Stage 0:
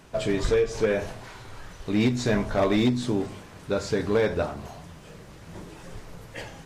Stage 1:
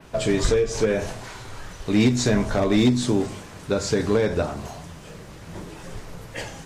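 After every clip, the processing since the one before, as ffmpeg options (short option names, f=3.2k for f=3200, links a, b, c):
-filter_complex "[0:a]acrossover=split=380[a][b];[b]acompressor=threshold=-27dB:ratio=6[c];[a][c]amix=inputs=2:normalize=0,adynamicequalizer=threshold=0.00178:dfrequency=7300:dqfactor=1:tfrequency=7300:tqfactor=1:attack=5:release=100:ratio=0.375:range=3:mode=boostabove:tftype=bell,volume=4.5dB"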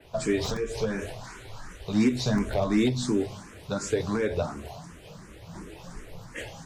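-filter_complex "[0:a]acrossover=split=100[a][b];[a]aeval=exprs='(mod(15*val(0)+1,2)-1)/15':c=same[c];[c][b]amix=inputs=2:normalize=0,asplit=2[d][e];[e]afreqshift=2.8[f];[d][f]amix=inputs=2:normalize=1,volume=-2.5dB"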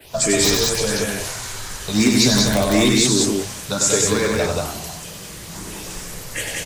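-filter_complex "[0:a]asplit=2[a][b];[b]aecho=0:1:96.21|186.6:0.631|0.794[c];[a][c]amix=inputs=2:normalize=0,crystalizer=i=5:c=0,volume=4.5dB"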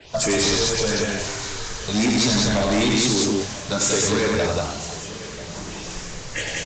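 -af "aresample=16000,asoftclip=type=hard:threshold=-16.5dB,aresample=44100,aecho=1:1:989:0.141"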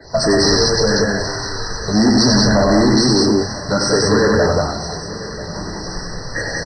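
-af "afftfilt=real='re*eq(mod(floor(b*sr/1024/2000),2),0)':imag='im*eq(mod(floor(b*sr/1024/2000),2),0)':win_size=1024:overlap=0.75,volume=7.5dB"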